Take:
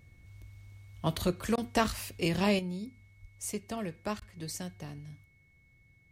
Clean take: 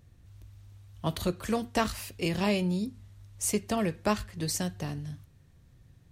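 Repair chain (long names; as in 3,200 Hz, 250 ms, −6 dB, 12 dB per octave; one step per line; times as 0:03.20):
notch filter 2,200 Hz, Q 30
high-pass at the plosives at 0:03.21
repair the gap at 0:01.56/0:04.20, 15 ms
level 0 dB, from 0:02.59 +8 dB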